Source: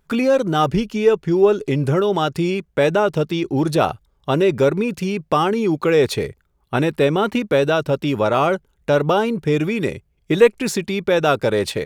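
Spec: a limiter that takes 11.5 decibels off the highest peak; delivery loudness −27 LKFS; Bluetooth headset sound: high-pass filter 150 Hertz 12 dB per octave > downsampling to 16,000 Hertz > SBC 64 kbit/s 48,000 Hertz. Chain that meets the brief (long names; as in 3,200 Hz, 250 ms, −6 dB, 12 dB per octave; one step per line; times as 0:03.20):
brickwall limiter −13 dBFS
high-pass filter 150 Hz 12 dB per octave
downsampling to 16,000 Hz
level −4 dB
SBC 64 kbit/s 48,000 Hz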